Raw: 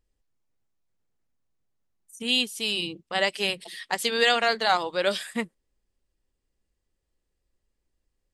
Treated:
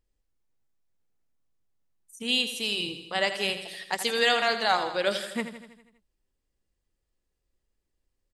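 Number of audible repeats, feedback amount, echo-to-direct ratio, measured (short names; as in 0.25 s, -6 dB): 6, 59%, -8.5 dB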